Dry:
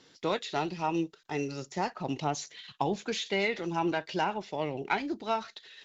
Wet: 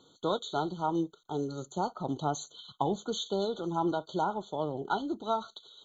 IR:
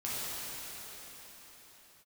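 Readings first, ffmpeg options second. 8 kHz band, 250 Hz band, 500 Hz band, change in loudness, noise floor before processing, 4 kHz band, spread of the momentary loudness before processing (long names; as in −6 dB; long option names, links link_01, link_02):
can't be measured, 0.0 dB, 0.0 dB, −1.0 dB, −62 dBFS, −2.0 dB, 5 LU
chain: -af "afftfilt=real='re*eq(mod(floor(b*sr/1024/1500),2),0)':imag='im*eq(mod(floor(b*sr/1024/1500),2),0)':win_size=1024:overlap=0.75"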